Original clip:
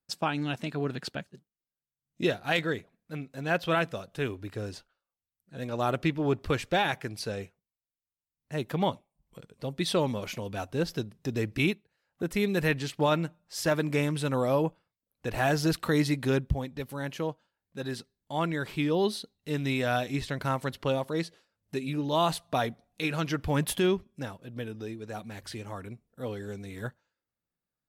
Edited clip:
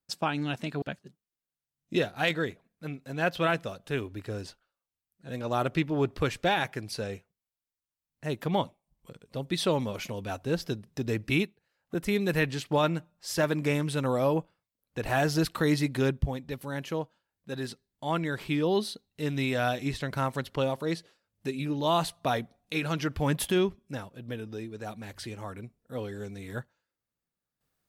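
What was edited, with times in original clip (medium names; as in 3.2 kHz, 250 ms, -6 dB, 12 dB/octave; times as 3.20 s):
0.82–1.10 s: delete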